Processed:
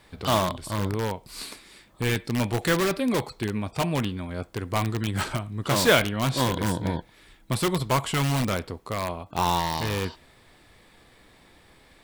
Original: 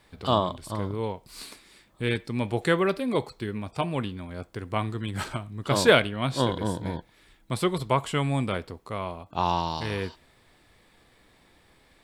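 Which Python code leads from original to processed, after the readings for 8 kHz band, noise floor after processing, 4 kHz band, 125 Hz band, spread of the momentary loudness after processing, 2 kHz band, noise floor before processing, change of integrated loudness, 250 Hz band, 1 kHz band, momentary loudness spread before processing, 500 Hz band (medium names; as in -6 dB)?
+7.0 dB, -56 dBFS, +2.5 dB, +3.0 dB, 10 LU, +1.5 dB, -61 dBFS, +1.5 dB, +2.0 dB, +1.0 dB, 12 LU, -0.5 dB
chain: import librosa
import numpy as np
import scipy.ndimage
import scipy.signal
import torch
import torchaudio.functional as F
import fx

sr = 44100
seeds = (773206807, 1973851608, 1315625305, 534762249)

p1 = fx.dynamic_eq(x, sr, hz=430.0, q=2.2, threshold_db=-35.0, ratio=4.0, max_db=-3)
p2 = (np.mod(10.0 ** (21.5 / 20.0) * p1 + 1.0, 2.0) - 1.0) / 10.0 ** (21.5 / 20.0)
y = p1 + F.gain(torch.from_numpy(p2), -3.5).numpy()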